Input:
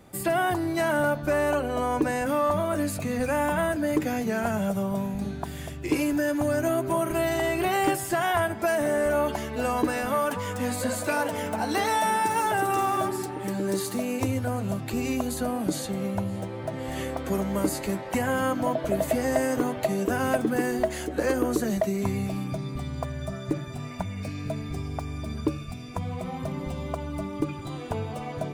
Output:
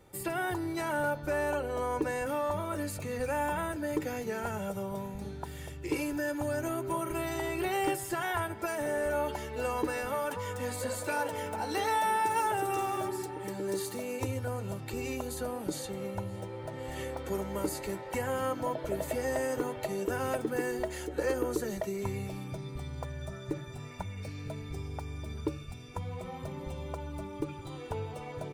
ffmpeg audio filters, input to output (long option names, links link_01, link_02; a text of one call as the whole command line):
ffmpeg -i in.wav -af "aecho=1:1:2.2:0.5,volume=-7dB" out.wav